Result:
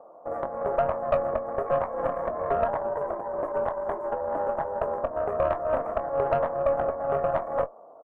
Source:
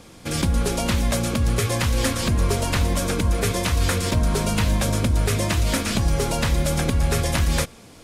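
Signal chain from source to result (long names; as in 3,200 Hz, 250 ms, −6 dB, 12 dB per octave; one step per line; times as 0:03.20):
elliptic low-pass filter 1,200 Hz, stop band 40 dB
0:02.68–0:05.04: frequency shifter −120 Hz
high-pass with resonance 630 Hz, resonance Q 5.2
tube saturation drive 14 dB, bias 0.7
double-tracking delay 22 ms −12 dB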